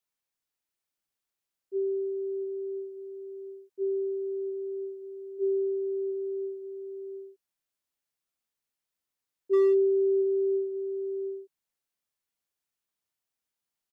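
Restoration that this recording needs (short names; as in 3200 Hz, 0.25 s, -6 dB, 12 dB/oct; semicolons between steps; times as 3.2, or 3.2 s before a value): clip repair -18.5 dBFS; inverse comb 0.713 s -8.5 dB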